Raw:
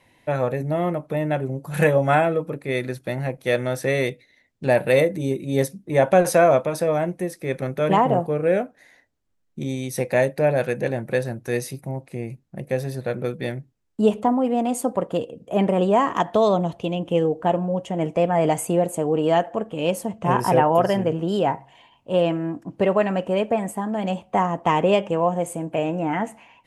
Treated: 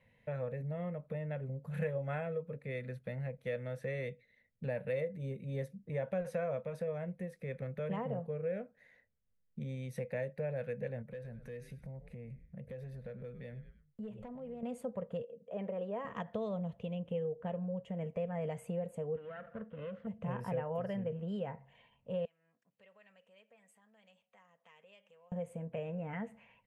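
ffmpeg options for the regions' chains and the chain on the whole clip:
-filter_complex "[0:a]asettb=1/sr,asplit=3[a][b][c];[a]atrim=end=11.024[d];[b]atrim=start=11.02:end=14.63,asetpts=PTS-STARTPTS,afade=t=in:d=0.004:c=qsin,afade=t=out:st=3.606:d=0.004:c=qsin,asplit=4[e][f][g][h];[f]adelay=101,afreqshift=-93,volume=-18dB[i];[g]adelay=202,afreqshift=-186,volume=-26.6dB[j];[h]adelay=303,afreqshift=-279,volume=-35.3dB[k];[e][i][j][k]amix=inputs=4:normalize=0,atrim=end_sample=159201,acompressor=threshold=-38dB:ratio=2.5:attack=3.2:release=140:knee=1:detection=peak,asoftclip=type=hard:threshold=-27dB[l];[c]atrim=start=14.626[m];[d][l]acrossfade=d=0.004:c1=hsin:c2=qsin[n];[n][m]acrossfade=d=0.004:c1=qsin:c2=hsin,asettb=1/sr,asplit=3[o][p][q];[o]atrim=end=15.224[r];[p]atrim=start=15.22:end=16.05,asetpts=PTS-STARTPTS,afade=t=in:d=0.004:c=qsin,afade=t=out:st=0.826:d=0.004:c=qsin,highpass=410,lowpass=6.6k,tiltshelf=f=650:g=5[s];[q]atrim=start=16.046[t];[r][s]acrossfade=d=0.004:c1=hsin:c2=qsin[u];[u][t]acrossfade=d=0.004:c1=qsin:c2=hsin,asettb=1/sr,asplit=3[v][w][x];[v]atrim=end=19.164[y];[w]atrim=start=19.16:end=20.07,asetpts=PTS-STARTPTS,afade=t=in:d=0.004:c=qsin,afade=t=out:st=0.906:d=0.004:c=qsin,aeval=exprs='if(lt(val(0),0),0.251*val(0),val(0))':c=same,acompressor=threshold=-23dB:ratio=6:attack=3.2:release=140:knee=1:detection=peak,highpass=110,equalizer=f=460:t=q:w=4:g=-4,equalizer=f=830:t=q:w=4:g=-8,equalizer=f=1.4k:t=q:w=4:g=7,equalizer=f=2.4k:t=q:w=4:g=-7,lowpass=f=3k:w=0.5412,lowpass=f=3k:w=1.3066[z];[x]atrim=start=20.066[aa];[y][z]acrossfade=d=0.004:c1=hsin:c2=qsin[ab];[ab][aa]acrossfade=d=0.004:c1=qsin:c2=hsin,asettb=1/sr,asplit=3[ac][ad][ae];[ac]atrim=end=22.254[af];[ad]atrim=start=22.25:end=25.32,asetpts=PTS-STARTPTS,afade=t=in:d=0.004:c=qsin,afade=t=out:st=3.066:d=0.004:c=qsin,acompressor=threshold=-38dB:ratio=2:attack=3.2:release=140:knee=1:detection=peak,bandpass=f=6.3k:t=q:w=0.91[ag];[ae]atrim=start=25.316[ah];[af][ag]acrossfade=d=0.004:c1=hsin:c2=qsin[ai];[ai][ah]acrossfade=d=0.004:c1=qsin:c2=hsin,firequalizer=gain_entry='entry(220,0);entry(320,-22);entry(470,1);entry(750,-12);entry(1900,-4);entry(5200,-18)':delay=0.05:min_phase=1,acompressor=threshold=-35dB:ratio=2,volume=-6dB"

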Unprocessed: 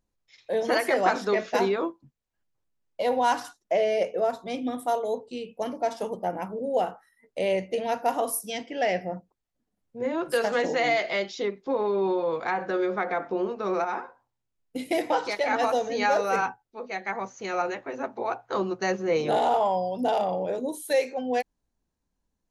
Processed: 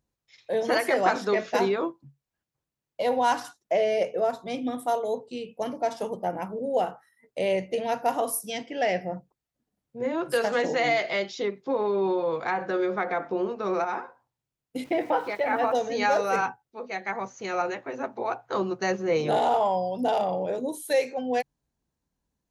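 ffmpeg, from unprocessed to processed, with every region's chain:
-filter_complex "[0:a]asettb=1/sr,asplit=3[a][b][c];[a]atrim=end=14.844[d];[b]atrim=start=14.84:end=15.75,asetpts=PTS-STARTPTS,afade=t=in:d=0.004:c=qsin,afade=t=out:st=0.906:d=0.004:c=qsin,lowpass=2.3k,aeval=exprs='val(0)*gte(abs(val(0)),0.00376)':c=same[e];[c]atrim=start=15.746[f];[d][e]acrossfade=d=0.004:c1=hsin:c2=qsin[g];[g][f]acrossfade=d=0.004:c1=qsin:c2=hsin,highpass=41,equalizer=f=140:w=7.5:g=8.5"

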